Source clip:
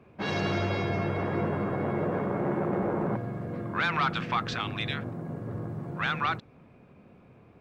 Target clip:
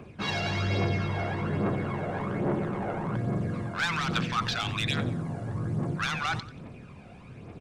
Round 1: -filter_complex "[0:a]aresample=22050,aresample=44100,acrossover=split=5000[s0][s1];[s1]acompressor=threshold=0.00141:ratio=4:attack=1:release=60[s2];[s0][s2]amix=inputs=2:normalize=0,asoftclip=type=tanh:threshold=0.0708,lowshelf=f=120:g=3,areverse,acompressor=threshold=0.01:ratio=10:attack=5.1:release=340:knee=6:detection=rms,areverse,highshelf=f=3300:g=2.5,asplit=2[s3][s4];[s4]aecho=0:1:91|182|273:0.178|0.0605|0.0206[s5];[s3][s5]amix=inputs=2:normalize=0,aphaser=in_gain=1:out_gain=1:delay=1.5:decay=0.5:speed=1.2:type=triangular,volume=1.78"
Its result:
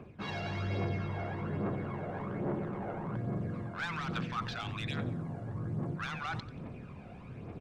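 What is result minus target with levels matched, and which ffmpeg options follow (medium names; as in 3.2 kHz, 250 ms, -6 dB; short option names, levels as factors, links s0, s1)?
8 kHz band -7.0 dB; compression: peak gain reduction +6.5 dB
-filter_complex "[0:a]aresample=22050,aresample=44100,acrossover=split=5000[s0][s1];[s1]acompressor=threshold=0.00141:ratio=4:attack=1:release=60[s2];[s0][s2]amix=inputs=2:normalize=0,asoftclip=type=tanh:threshold=0.0708,lowshelf=f=120:g=3,areverse,acompressor=threshold=0.0224:ratio=10:attack=5.1:release=340:knee=6:detection=rms,areverse,highshelf=f=3300:g=13,asplit=2[s3][s4];[s4]aecho=0:1:91|182|273:0.178|0.0605|0.0206[s5];[s3][s5]amix=inputs=2:normalize=0,aphaser=in_gain=1:out_gain=1:delay=1.5:decay=0.5:speed=1.2:type=triangular,volume=1.78"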